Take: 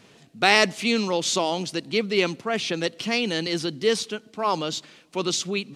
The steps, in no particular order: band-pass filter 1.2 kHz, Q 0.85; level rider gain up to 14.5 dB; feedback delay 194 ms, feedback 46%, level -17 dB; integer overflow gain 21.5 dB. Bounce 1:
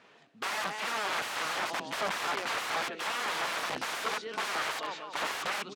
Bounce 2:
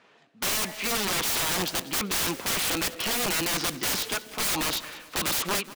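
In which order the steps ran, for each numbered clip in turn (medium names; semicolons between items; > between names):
level rider > feedback delay > integer overflow > band-pass filter; band-pass filter > level rider > integer overflow > feedback delay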